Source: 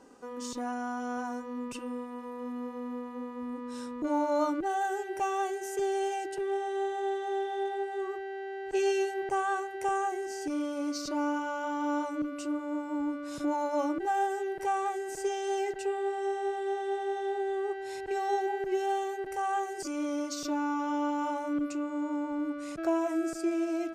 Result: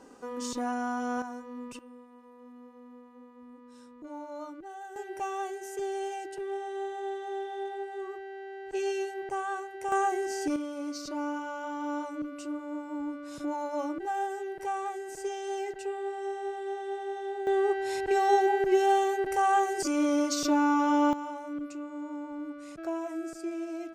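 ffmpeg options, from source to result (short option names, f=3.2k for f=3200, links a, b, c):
-af "asetnsamples=n=441:p=0,asendcmd='1.22 volume volume -4dB;1.79 volume volume -13dB;4.96 volume volume -3.5dB;9.92 volume volume 4dB;10.56 volume volume -3dB;17.47 volume volume 6.5dB;21.13 volume volume -5.5dB',volume=3dB"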